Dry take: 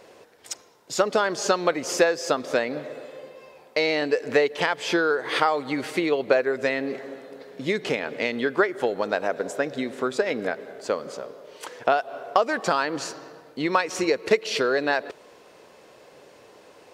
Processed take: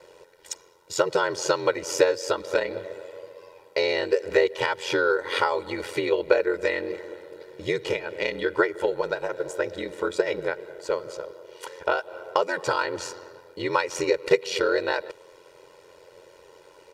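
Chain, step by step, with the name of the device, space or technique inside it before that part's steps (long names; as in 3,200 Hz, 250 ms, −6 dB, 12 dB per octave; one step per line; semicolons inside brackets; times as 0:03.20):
ring-modulated robot voice (ring modulation 44 Hz; comb filter 2.1 ms, depth 84%)
level −1 dB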